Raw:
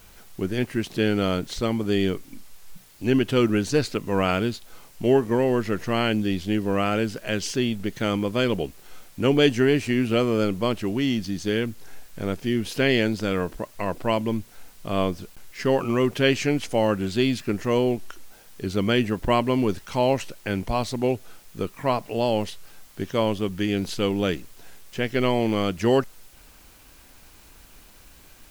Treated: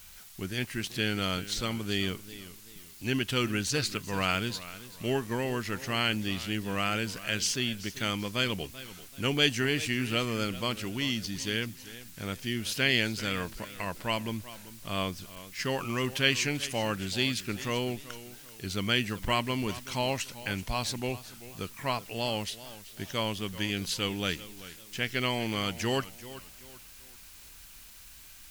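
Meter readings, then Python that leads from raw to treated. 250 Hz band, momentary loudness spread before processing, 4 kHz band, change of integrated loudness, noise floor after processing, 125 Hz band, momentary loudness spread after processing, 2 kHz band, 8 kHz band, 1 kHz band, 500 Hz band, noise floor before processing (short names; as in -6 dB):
-10.0 dB, 10 LU, +1.0 dB, -6.5 dB, -51 dBFS, -6.5 dB, 17 LU, -1.0 dB, +2.5 dB, -6.5 dB, -11.5 dB, -51 dBFS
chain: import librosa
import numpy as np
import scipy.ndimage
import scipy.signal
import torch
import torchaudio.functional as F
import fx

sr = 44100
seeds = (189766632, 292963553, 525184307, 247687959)

y = fx.tone_stack(x, sr, knobs='5-5-5')
y = fx.echo_warbled(y, sr, ms=387, feedback_pct=35, rate_hz=2.8, cents=91, wet_db=-16)
y = y * librosa.db_to_amplitude(8.5)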